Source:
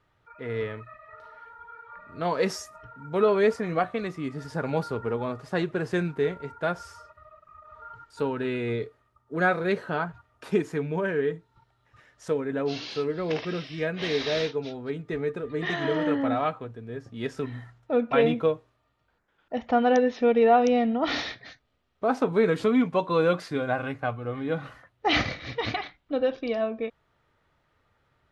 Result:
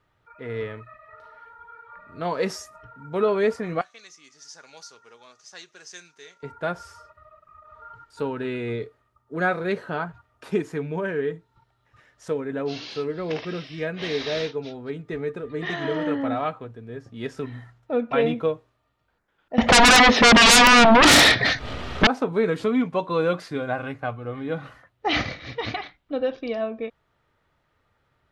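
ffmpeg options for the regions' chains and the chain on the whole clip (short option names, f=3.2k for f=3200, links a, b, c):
-filter_complex "[0:a]asettb=1/sr,asplit=3[a][b][c];[a]atrim=end=3.814[d];[b]atrim=start=3.81:end=6.43,asetpts=PTS-STARTPTS,afade=t=in:d=0.004:c=qsin,afade=t=out:st=2.616:d=0.004:c=qsin,lowpass=f=6.1k:t=q:w=6,aderivative[e];[c]atrim=start=6.426[f];[d][e]acrossfade=d=0.004:c1=hsin:c2=qsin[g];[g][f]acrossfade=d=0.004:c1=qsin:c2=hsin,asettb=1/sr,asplit=3[h][i][j];[h]atrim=end=19.584[k];[i]atrim=start=19.58:end=22.07,asetpts=PTS-STARTPTS,afade=t=in:d=0.004:c=qsin,afade=t=out:st=2.486:d=0.004:c=qsin,lowpass=6k,acompressor=mode=upward:threshold=-36dB:ratio=2.5:attack=3.2:release=140:knee=2.83:detection=peak,aeval=exprs='0.335*sin(PI/2*8.91*val(0)/0.335)':c=same[l];[j]atrim=start=22.066[m];[k][l]acrossfade=d=0.004:c1=hsin:c2=qsin[n];[n][m]acrossfade=d=0.004:c1=qsin:c2=hsin"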